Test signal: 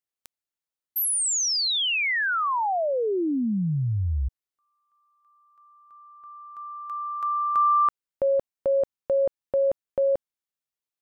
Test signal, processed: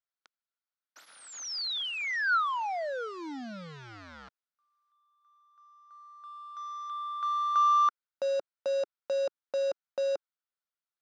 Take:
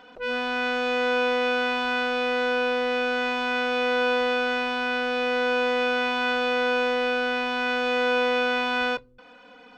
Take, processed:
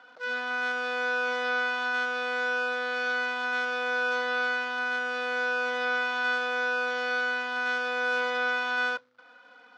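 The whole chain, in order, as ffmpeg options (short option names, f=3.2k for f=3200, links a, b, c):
-af "acrusher=bits=2:mode=log:mix=0:aa=0.000001,highpass=350,equalizer=f=390:t=q:w=4:g=-10,equalizer=f=1.4k:t=q:w=4:g=9,equalizer=f=2.7k:t=q:w=4:g=-4,lowpass=f=5.1k:w=0.5412,lowpass=f=5.1k:w=1.3066,volume=-6dB"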